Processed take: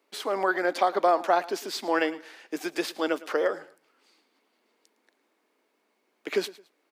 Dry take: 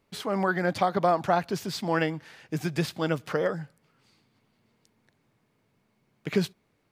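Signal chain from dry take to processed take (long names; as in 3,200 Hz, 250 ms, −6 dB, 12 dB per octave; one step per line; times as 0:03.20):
Butterworth high-pass 280 Hz 36 dB per octave
repeating echo 109 ms, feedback 29%, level −19 dB
level +1.5 dB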